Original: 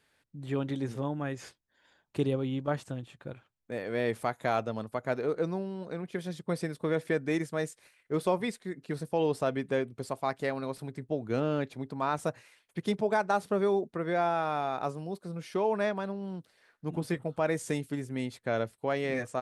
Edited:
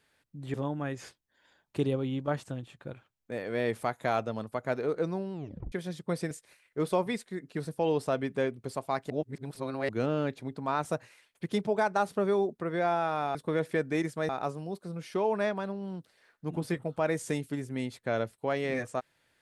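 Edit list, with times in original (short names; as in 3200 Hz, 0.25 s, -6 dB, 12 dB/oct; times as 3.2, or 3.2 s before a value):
0.54–0.94 cut
5.73 tape stop 0.39 s
6.71–7.65 move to 14.69
10.44–11.23 reverse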